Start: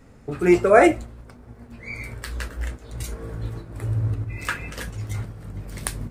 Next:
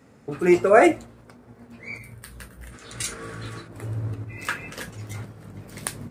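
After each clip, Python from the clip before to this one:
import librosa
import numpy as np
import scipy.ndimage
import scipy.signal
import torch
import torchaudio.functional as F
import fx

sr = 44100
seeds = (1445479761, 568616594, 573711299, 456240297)

y = fx.spec_box(x, sr, start_s=1.98, length_s=0.77, low_hz=220.0, high_hz=8400.0, gain_db=-9)
y = scipy.signal.sosfilt(scipy.signal.butter(2, 130.0, 'highpass', fs=sr, output='sos'), y)
y = fx.spec_box(y, sr, start_s=2.72, length_s=0.95, low_hz=1100.0, high_hz=11000.0, gain_db=10)
y = y * librosa.db_to_amplitude(-1.0)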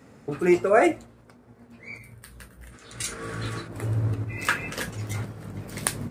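y = fx.rider(x, sr, range_db=4, speed_s=0.5)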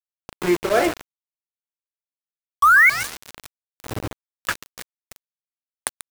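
y = fx.spec_paint(x, sr, seeds[0], shape='rise', start_s=2.62, length_s=0.28, low_hz=1100.0, high_hz=2300.0, level_db=-12.0)
y = fx.echo_feedback(y, sr, ms=139, feedback_pct=59, wet_db=-12.5)
y = np.where(np.abs(y) >= 10.0 ** (-21.5 / 20.0), y, 0.0)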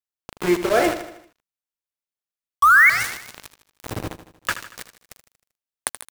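y = fx.echo_feedback(x, sr, ms=78, feedback_pct=52, wet_db=-12.0)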